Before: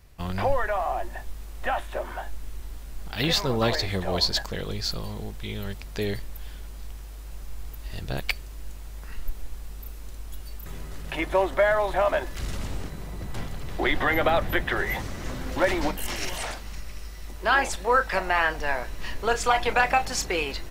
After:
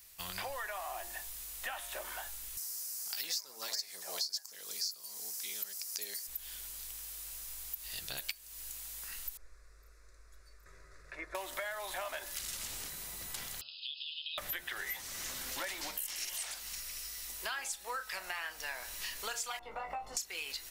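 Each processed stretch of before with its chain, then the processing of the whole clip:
0:02.57–0:06.27: high-pass filter 270 Hz + high shelf with overshoot 4,300 Hz +6.5 dB, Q 3
0:09.37–0:11.35: head-to-tape spacing loss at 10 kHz 30 dB + phaser with its sweep stopped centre 830 Hz, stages 6
0:13.61–0:14.38: linear-phase brick-wall band-pass 2,500–5,200 Hz + downward compressor 4 to 1, threshold −38 dBFS
0:19.59–0:20.17: Savitzky-Golay smoothing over 65 samples + downward compressor 2 to 1, threshold −25 dBFS + double-tracking delay 18 ms −4 dB
whole clip: first-order pre-emphasis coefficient 0.97; hum removal 117 Hz, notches 14; downward compressor 6 to 1, threshold −46 dBFS; level +9 dB

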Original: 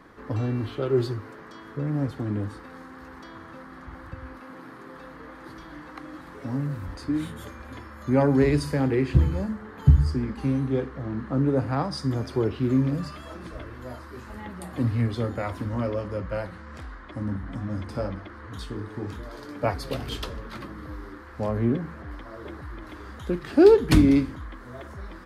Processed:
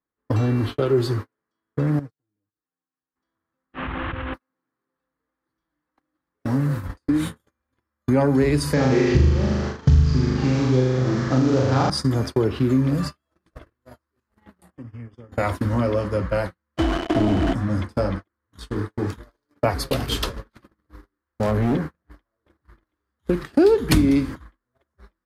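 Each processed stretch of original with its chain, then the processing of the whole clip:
0:01.99–0:03.16: noise gate −34 dBFS, range −15 dB + comb filter 6.5 ms, depth 87% + downward compressor 3 to 1, threshold −46 dBFS
0:03.73–0:04.34: linear delta modulator 16 kbit/s, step −39 dBFS + envelope flattener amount 100%
0:08.73–0:11.90: variable-slope delta modulation 32 kbit/s + flutter between parallel walls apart 6.7 metres, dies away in 1.2 s
0:14.70–0:15.32: downward compressor 12 to 1, threshold −32 dBFS + Butterworth band-reject 4,000 Hz, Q 2.8 + high-frequency loss of the air 84 metres
0:16.77–0:17.53: log-companded quantiser 2 bits + head-to-tape spacing loss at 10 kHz 23 dB + hollow resonant body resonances 330/670/3,000 Hz, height 16 dB, ringing for 60 ms
0:19.99–0:22.81: hum removal 85.56 Hz, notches 29 + hard clipping −23 dBFS
whole clip: noise gate −33 dBFS, range −48 dB; high-shelf EQ 6,500 Hz +7 dB; downward compressor 2.5 to 1, threshold −26 dBFS; level +8.5 dB

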